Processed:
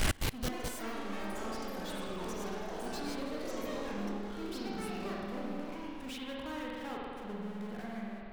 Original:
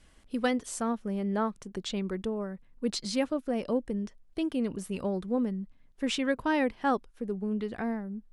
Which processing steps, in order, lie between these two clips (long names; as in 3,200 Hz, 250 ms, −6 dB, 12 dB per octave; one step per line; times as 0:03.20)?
power curve on the samples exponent 0.35
spring reverb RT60 2.5 s, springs 49 ms, chirp 30 ms, DRR −4 dB
gate with flip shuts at −22 dBFS, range −27 dB
delay with pitch and tempo change per echo 214 ms, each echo +6 semitones, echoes 3
level +3.5 dB